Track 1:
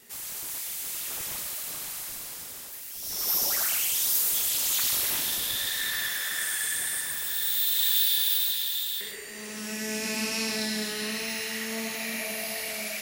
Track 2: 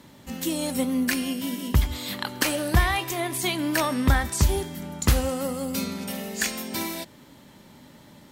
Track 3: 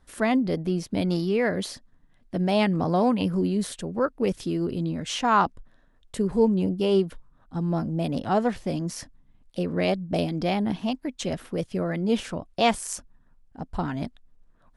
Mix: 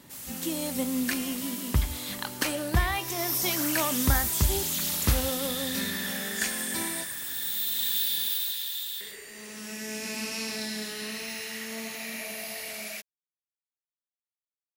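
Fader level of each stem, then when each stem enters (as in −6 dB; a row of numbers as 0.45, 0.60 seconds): −4.0 dB, −4.5 dB, muted; 0.00 s, 0.00 s, muted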